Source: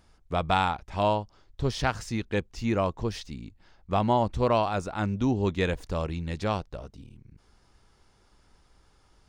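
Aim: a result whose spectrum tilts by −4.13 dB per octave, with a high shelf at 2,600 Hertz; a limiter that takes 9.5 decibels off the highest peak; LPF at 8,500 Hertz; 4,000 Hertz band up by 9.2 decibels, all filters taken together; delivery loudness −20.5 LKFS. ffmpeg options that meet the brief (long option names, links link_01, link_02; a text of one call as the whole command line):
ffmpeg -i in.wav -af "lowpass=8500,highshelf=frequency=2600:gain=5,equalizer=frequency=4000:width_type=o:gain=7.5,volume=8.5dB,alimiter=limit=-6.5dB:level=0:latency=1" out.wav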